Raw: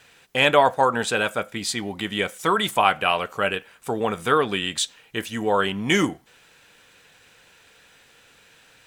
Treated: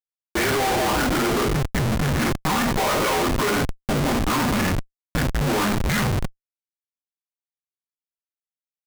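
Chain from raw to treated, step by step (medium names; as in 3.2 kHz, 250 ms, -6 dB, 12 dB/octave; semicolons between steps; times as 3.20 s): two-slope reverb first 0.38 s, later 2 s, from -22 dB, DRR -2.5 dB; mistuned SSB -180 Hz 240–2300 Hz; Schmitt trigger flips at -28 dBFS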